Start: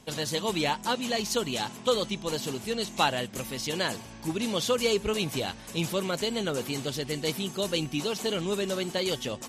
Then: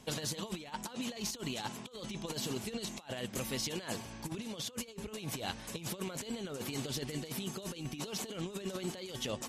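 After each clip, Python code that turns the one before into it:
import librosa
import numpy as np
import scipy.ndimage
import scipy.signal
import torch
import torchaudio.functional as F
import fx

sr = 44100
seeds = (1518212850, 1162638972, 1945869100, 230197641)

y = fx.over_compress(x, sr, threshold_db=-33.0, ratio=-0.5)
y = y * 10.0 ** (-6.0 / 20.0)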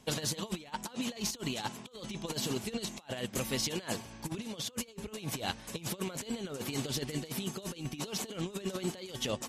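y = fx.upward_expand(x, sr, threshold_db=-49.0, expansion=1.5)
y = y * 10.0 ** (4.5 / 20.0)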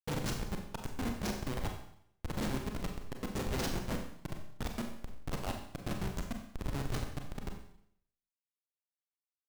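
y = fx.fade_out_tail(x, sr, length_s=2.77)
y = fx.schmitt(y, sr, flips_db=-29.5)
y = fx.rev_schroeder(y, sr, rt60_s=0.68, comb_ms=30, drr_db=3.0)
y = y * 10.0 ** (4.0 / 20.0)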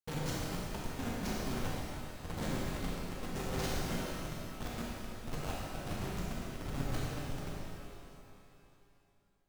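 y = fx.echo_feedback(x, sr, ms=448, feedback_pct=47, wet_db=-17)
y = fx.rev_shimmer(y, sr, seeds[0], rt60_s=2.1, semitones=12, shimmer_db=-8, drr_db=-3.0)
y = y * 10.0 ** (-5.0 / 20.0)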